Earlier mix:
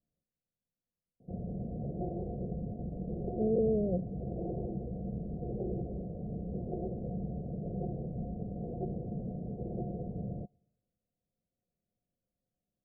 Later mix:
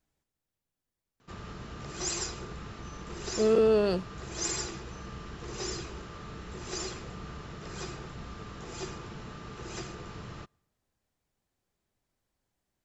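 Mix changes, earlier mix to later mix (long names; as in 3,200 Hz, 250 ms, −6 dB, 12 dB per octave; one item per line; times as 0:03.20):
background −9.5 dB
master: remove Chebyshev low-pass with heavy ripple 740 Hz, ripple 9 dB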